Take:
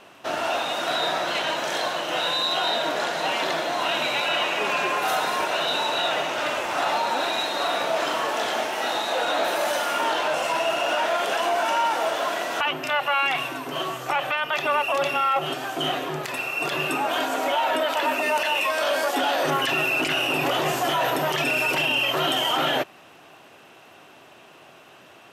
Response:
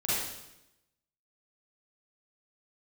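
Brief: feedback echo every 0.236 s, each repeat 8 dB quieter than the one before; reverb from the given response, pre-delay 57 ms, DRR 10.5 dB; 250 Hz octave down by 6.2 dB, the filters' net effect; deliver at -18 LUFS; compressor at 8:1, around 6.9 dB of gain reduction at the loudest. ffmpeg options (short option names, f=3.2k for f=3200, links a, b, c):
-filter_complex "[0:a]equalizer=f=250:t=o:g=-9,acompressor=threshold=-27dB:ratio=8,aecho=1:1:236|472|708|944|1180:0.398|0.159|0.0637|0.0255|0.0102,asplit=2[a][b];[1:a]atrim=start_sample=2205,adelay=57[c];[b][c]afir=irnorm=-1:irlink=0,volume=-19dB[d];[a][d]amix=inputs=2:normalize=0,volume=10.5dB"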